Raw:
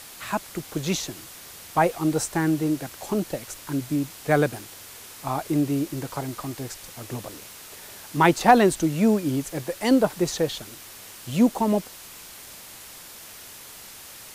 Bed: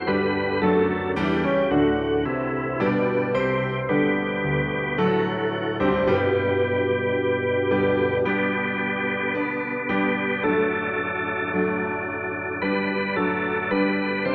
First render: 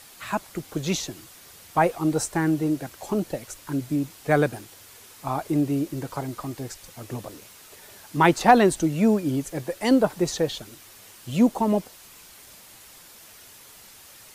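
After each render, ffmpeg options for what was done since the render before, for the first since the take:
ffmpeg -i in.wav -af "afftdn=noise_reduction=6:noise_floor=-43" out.wav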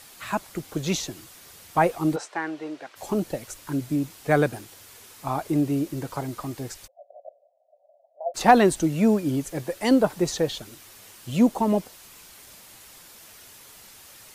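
ffmpeg -i in.wav -filter_complex "[0:a]asplit=3[link_01][link_02][link_03];[link_01]afade=type=out:start_time=2.15:duration=0.02[link_04];[link_02]highpass=570,lowpass=3800,afade=type=in:start_time=2.15:duration=0.02,afade=type=out:start_time=2.95:duration=0.02[link_05];[link_03]afade=type=in:start_time=2.95:duration=0.02[link_06];[link_04][link_05][link_06]amix=inputs=3:normalize=0,asplit=3[link_07][link_08][link_09];[link_07]afade=type=out:start_time=6.86:duration=0.02[link_10];[link_08]asuperpass=centerf=630:order=8:qfactor=3.4,afade=type=in:start_time=6.86:duration=0.02,afade=type=out:start_time=8.34:duration=0.02[link_11];[link_09]afade=type=in:start_time=8.34:duration=0.02[link_12];[link_10][link_11][link_12]amix=inputs=3:normalize=0" out.wav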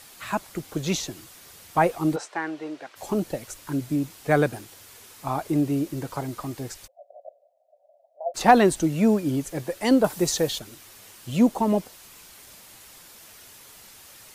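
ffmpeg -i in.wav -filter_complex "[0:a]asettb=1/sr,asplit=3[link_01][link_02][link_03];[link_01]atrim=end=10.044[link_04];[link_02]atrim=start=10.04:end=10.59,asetpts=PTS-STARTPTS,afade=type=in:duration=0.004:curve=qsin,afade=type=out:start_time=0.546:duration=0.004:curve=qsin,highshelf=frequency=5400:gain=10[link_05];[link_03]atrim=start=10.586[link_06];[link_04][link_05]acrossfade=duration=0.004:curve1=hsin:curve2=qsin[link_07];[link_07][link_06]acrossfade=duration=0.004:curve1=qsin:curve2=hsin" out.wav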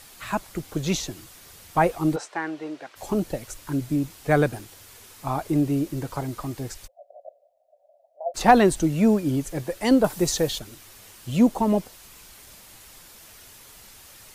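ffmpeg -i in.wav -af "lowshelf=frequency=67:gain=12" out.wav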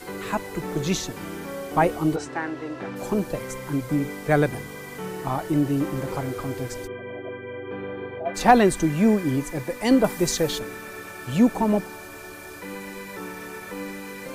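ffmpeg -i in.wav -i bed.wav -filter_complex "[1:a]volume=-12.5dB[link_01];[0:a][link_01]amix=inputs=2:normalize=0" out.wav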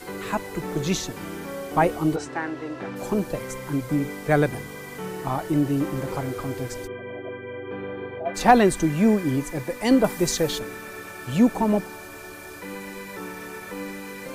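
ffmpeg -i in.wav -af anull out.wav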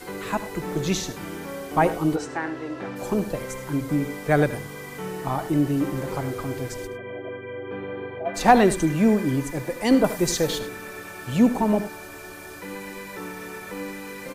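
ffmpeg -i in.wav -af "aecho=1:1:75|104:0.188|0.126" out.wav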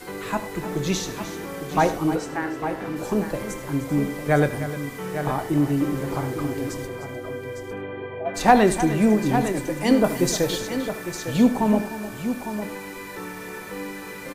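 ffmpeg -i in.wav -filter_complex "[0:a]asplit=2[link_01][link_02];[link_02]adelay=28,volume=-13dB[link_03];[link_01][link_03]amix=inputs=2:normalize=0,aecho=1:1:305|855:0.224|0.335" out.wav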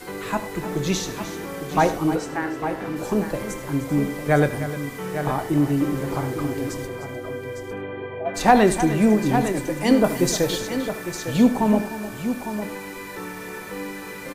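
ffmpeg -i in.wav -af "volume=1dB,alimiter=limit=-3dB:level=0:latency=1" out.wav

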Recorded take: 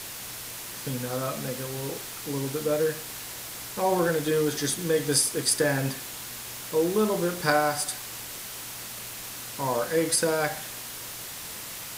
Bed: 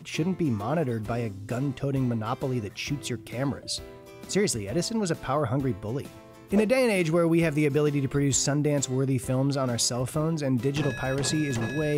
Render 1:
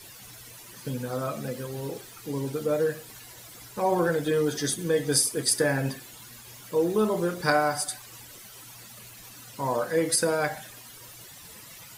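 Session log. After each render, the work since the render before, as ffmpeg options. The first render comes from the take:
ffmpeg -i in.wav -af "afftdn=noise_reduction=13:noise_floor=-39" out.wav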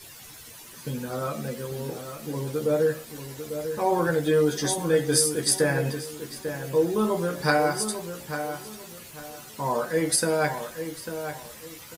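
ffmpeg -i in.wav -filter_complex "[0:a]asplit=2[link_01][link_02];[link_02]adelay=13,volume=-5dB[link_03];[link_01][link_03]amix=inputs=2:normalize=0,asplit=2[link_04][link_05];[link_05]adelay=846,lowpass=frequency=2200:poles=1,volume=-8.5dB,asplit=2[link_06][link_07];[link_07]adelay=846,lowpass=frequency=2200:poles=1,volume=0.29,asplit=2[link_08][link_09];[link_09]adelay=846,lowpass=frequency=2200:poles=1,volume=0.29[link_10];[link_06][link_08][link_10]amix=inputs=3:normalize=0[link_11];[link_04][link_11]amix=inputs=2:normalize=0" out.wav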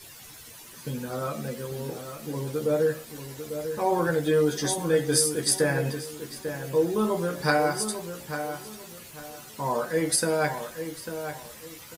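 ffmpeg -i in.wav -af "volume=-1dB" out.wav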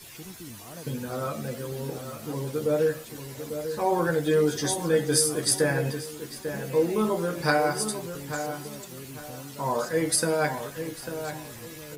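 ffmpeg -i in.wav -i bed.wav -filter_complex "[1:a]volume=-17.5dB[link_01];[0:a][link_01]amix=inputs=2:normalize=0" out.wav

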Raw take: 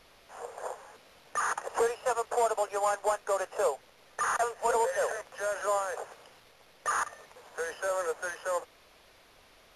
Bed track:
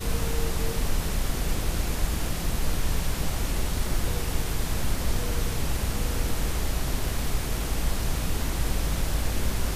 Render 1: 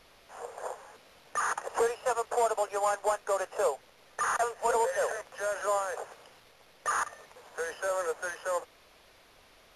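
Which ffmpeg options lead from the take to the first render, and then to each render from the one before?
ffmpeg -i in.wav -af anull out.wav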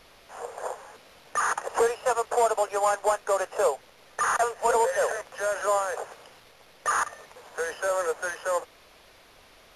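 ffmpeg -i in.wav -af "volume=4.5dB" out.wav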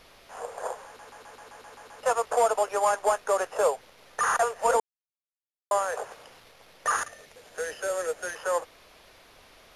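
ffmpeg -i in.wav -filter_complex "[0:a]asettb=1/sr,asplit=3[link_01][link_02][link_03];[link_01]atrim=end=6.964[link_04];[link_02]atrim=start=6.96:end=8.35,asetpts=PTS-STARTPTS,afade=type=in:duration=0.004:curve=qsin,afade=type=out:start_time=1.386:duration=0.004:curve=qsin,equalizer=frequency=1000:width_type=o:width=0.9:gain=-11[link_05];[link_03]atrim=start=8.346[link_06];[link_04][link_05]acrossfade=duration=0.004:curve1=hsin:curve2=qsin[link_07];[link_07][link_06]acrossfade=duration=0.004:curve1=qsin:curve2=hsin,asplit=12[link_08][link_09][link_10][link_11][link_12][link_13][link_14][link_15][link_16][link_17][link_18][link_19];[link_08]atrim=end=0.992[link_20];[link_09]atrim=start=0.858:end=0.992[link_21];[link_10]atrim=start=0.858:end=0.992[link_22];[link_11]atrim=start=0.858:end=0.992[link_23];[link_12]atrim=start=0.858:end=0.992[link_24];[link_13]atrim=start=0.858:end=0.992[link_25];[link_14]atrim=start=0.858:end=0.992[link_26];[link_15]atrim=start=0.858:end=0.992[link_27];[link_16]atrim=start=0.858:end=0.992[link_28];[link_17]atrim=start=2.028:end=4.8,asetpts=PTS-STARTPTS,afade=type=out:start_time=2.768:duration=0.004:curve=hsin[link_29];[link_18]atrim=start=4.8:end=5.71,asetpts=PTS-STARTPTS,volume=0[link_30];[link_19]atrim=start=5.71,asetpts=PTS-STARTPTS,afade=type=in:duration=0.004:curve=hsin[link_31];[link_20][link_21]acrossfade=duration=0.004:curve1=hsin:curve2=hsin[link_32];[link_32][link_22]acrossfade=duration=0.004:curve1=hsin:curve2=hsin[link_33];[link_33][link_23]acrossfade=duration=0.004:curve1=hsin:curve2=hsin[link_34];[link_34][link_24]acrossfade=duration=0.004:curve1=hsin:curve2=hsin[link_35];[link_35][link_25]acrossfade=duration=0.004:curve1=hsin:curve2=hsin[link_36];[link_36][link_26]acrossfade=duration=0.004:curve1=hsin:curve2=hsin[link_37];[link_37][link_27]acrossfade=duration=0.004:curve1=hsin:curve2=hsin[link_38];[link_38][link_28]acrossfade=duration=0.004:curve1=hsin:curve2=hsin[link_39];[link_29][link_30][link_31]concat=n=3:v=0:a=1[link_40];[link_39][link_40]acrossfade=duration=0.004:curve1=hsin:curve2=hsin" out.wav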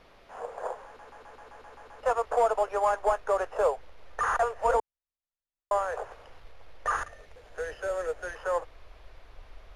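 ffmpeg -i in.wav -af "lowpass=frequency=1600:poles=1,asubboost=boost=11.5:cutoff=55" out.wav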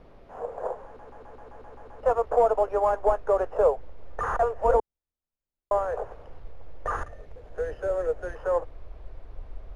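ffmpeg -i in.wav -af "tiltshelf=frequency=940:gain=9.5" out.wav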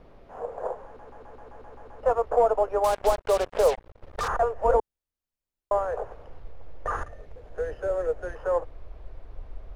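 ffmpeg -i in.wav -filter_complex "[0:a]asettb=1/sr,asplit=3[link_01][link_02][link_03];[link_01]atrim=end=2.844[link_04];[link_02]atrim=start=2.84:end=4.28,asetpts=PTS-STARTPTS,afade=type=in:duration=0.004:curve=qsin,afade=type=out:start_time=1.436:duration=0.004:curve=qsin,acrusher=bits=4:mix=0:aa=0.5[link_05];[link_03]atrim=start=4.276[link_06];[link_04][link_05]acrossfade=duration=0.004:curve1=hsin:curve2=qsin[link_07];[link_07][link_06]acrossfade=duration=0.004:curve1=qsin:curve2=hsin" out.wav

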